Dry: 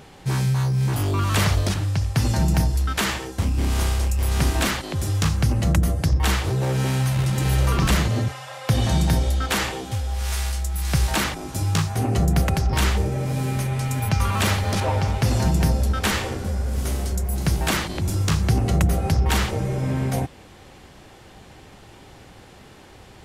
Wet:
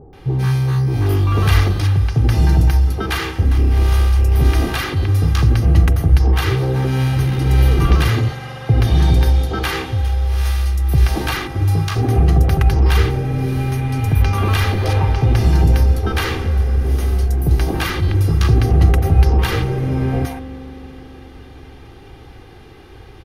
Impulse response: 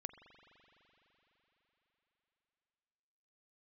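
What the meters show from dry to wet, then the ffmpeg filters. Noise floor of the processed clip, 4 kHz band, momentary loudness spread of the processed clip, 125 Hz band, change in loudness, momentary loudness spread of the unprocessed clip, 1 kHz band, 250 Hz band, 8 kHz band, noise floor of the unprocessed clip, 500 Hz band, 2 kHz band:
-40 dBFS, +1.0 dB, 6 LU, +7.0 dB, +6.0 dB, 6 LU, +2.5 dB, +3.5 dB, -5.0 dB, -46 dBFS, +5.0 dB, +3.0 dB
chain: -filter_complex "[0:a]equalizer=f=7600:t=o:w=0.64:g=-7.5,bandreject=f=7600:w=7.2,aecho=1:1:2.5:0.53,acrossover=split=750[s0][s1];[s1]adelay=130[s2];[s0][s2]amix=inputs=2:normalize=0,asplit=2[s3][s4];[1:a]atrim=start_sample=2205,lowshelf=f=430:g=6,highshelf=f=4500:g=-10.5[s5];[s4][s5]afir=irnorm=-1:irlink=0,volume=1.78[s6];[s3][s6]amix=inputs=2:normalize=0,volume=0.668"

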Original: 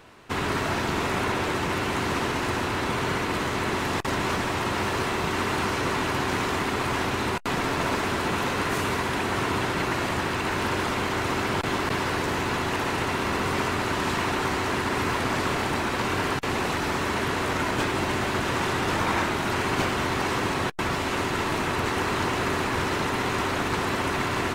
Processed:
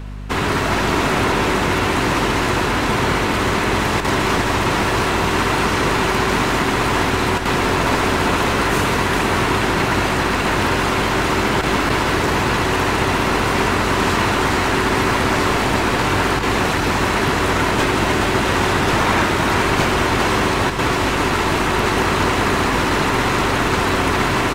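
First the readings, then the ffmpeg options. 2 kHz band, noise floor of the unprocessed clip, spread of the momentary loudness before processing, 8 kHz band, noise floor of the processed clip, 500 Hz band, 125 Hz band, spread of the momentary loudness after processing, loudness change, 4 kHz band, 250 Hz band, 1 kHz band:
+8.5 dB, -28 dBFS, 1 LU, +8.5 dB, -19 dBFS, +8.5 dB, +9.0 dB, 1 LU, +8.5 dB, +8.5 dB, +8.5 dB, +8.5 dB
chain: -af "aecho=1:1:412:0.531,aeval=exprs='val(0)+0.0158*(sin(2*PI*50*n/s)+sin(2*PI*2*50*n/s)/2+sin(2*PI*3*50*n/s)/3+sin(2*PI*4*50*n/s)/4+sin(2*PI*5*50*n/s)/5)':c=same,volume=2.37"

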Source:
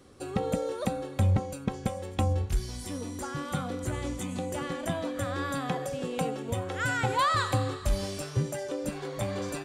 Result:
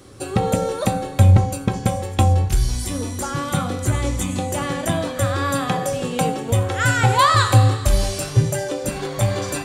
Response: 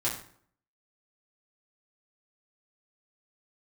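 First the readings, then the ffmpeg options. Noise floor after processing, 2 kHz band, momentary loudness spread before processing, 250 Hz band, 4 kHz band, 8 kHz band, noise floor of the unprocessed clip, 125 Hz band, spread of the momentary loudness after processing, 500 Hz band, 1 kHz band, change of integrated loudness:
-31 dBFS, +10.0 dB, 8 LU, +9.0 dB, +11.5 dB, +13.5 dB, -42 dBFS, +13.5 dB, 10 LU, +9.0 dB, +11.0 dB, +11.5 dB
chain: -filter_complex "[0:a]highshelf=f=4600:g=5,asplit=2[s0][s1];[1:a]atrim=start_sample=2205,lowshelf=f=79:g=8[s2];[s1][s2]afir=irnorm=-1:irlink=0,volume=0.282[s3];[s0][s3]amix=inputs=2:normalize=0,volume=2.24"

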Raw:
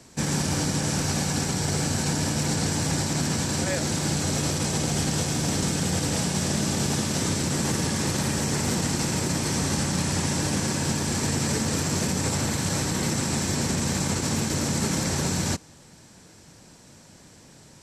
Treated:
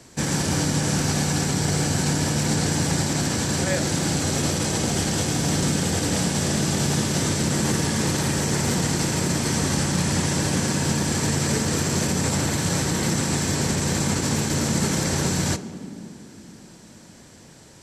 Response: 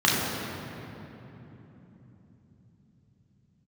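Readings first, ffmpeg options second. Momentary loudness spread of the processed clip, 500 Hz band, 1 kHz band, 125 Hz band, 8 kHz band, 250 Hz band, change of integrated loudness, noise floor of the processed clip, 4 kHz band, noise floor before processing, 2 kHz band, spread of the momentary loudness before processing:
1 LU, +3.5 dB, +2.5 dB, +3.0 dB, +2.0 dB, +3.0 dB, +2.5 dB, -47 dBFS, +2.0 dB, -51 dBFS, +3.0 dB, 1 LU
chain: -filter_complex "[0:a]asplit=2[s0][s1];[1:a]atrim=start_sample=2205,asetrate=74970,aresample=44100[s2];[s1][s2]afir=irnorm=-1:irlink=0,volume=0.0531[s3];[s0][s3]amix=inputs=2:normalize=0,volume=1.26"

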